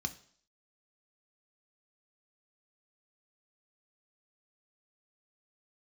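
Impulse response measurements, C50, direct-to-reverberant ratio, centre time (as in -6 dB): 16.0 dB, 7.5 dB, 6 ms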